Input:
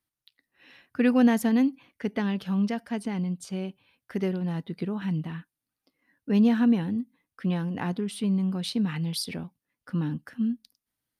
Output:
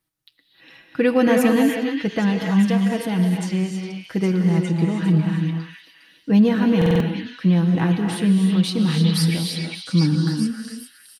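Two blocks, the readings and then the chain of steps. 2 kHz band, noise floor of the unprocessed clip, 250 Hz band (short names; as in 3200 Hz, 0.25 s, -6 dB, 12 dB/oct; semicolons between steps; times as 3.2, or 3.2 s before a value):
+9.0 dB, under -85 dBFS, +7.0 dB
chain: low shelf 440 Hz +3 dB; comb 6.2 ms, depth 59%; on a send: delay with a stepping band-pass 0.407 s, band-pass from 2700 Hz, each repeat 0.7 oct, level -1 dB; on the sum: non-linear reverb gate 0.34 s rising, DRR 2.5 dB; stuck buffer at 6.77, samples 2048, times 4; gain +4.5 dB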